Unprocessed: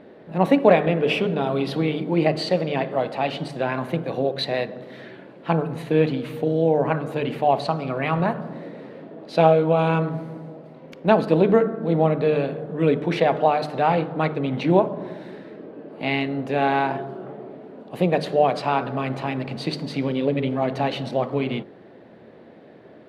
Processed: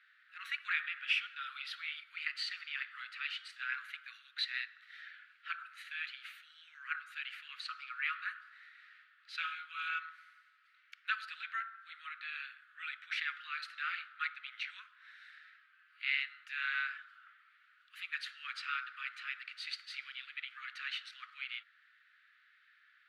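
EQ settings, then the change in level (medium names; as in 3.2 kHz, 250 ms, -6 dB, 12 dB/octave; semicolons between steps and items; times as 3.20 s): steep high-pass 1.3 kHz 96 dB/octave; treble shelf 4.6 kHz -11 dB; -3.5 dB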